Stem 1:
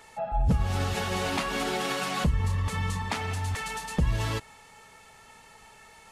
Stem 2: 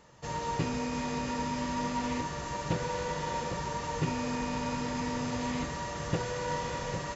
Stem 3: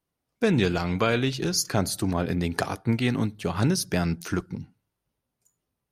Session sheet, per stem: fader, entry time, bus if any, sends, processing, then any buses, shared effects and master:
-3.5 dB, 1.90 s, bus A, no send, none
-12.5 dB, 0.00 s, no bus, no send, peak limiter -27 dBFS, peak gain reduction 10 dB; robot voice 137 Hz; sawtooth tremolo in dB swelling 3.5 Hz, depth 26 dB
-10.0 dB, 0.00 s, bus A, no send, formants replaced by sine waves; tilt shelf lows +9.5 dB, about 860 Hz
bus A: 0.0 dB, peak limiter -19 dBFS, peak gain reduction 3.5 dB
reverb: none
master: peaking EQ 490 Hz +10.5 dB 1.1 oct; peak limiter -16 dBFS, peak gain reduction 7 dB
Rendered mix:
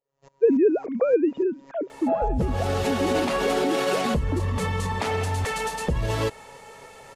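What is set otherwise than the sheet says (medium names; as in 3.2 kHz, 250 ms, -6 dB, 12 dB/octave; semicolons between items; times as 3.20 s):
stem 1 -3.5 dB -> +4.0 dB; master: missing peak limiter -16 dBFS, peak gain reduction 7 dB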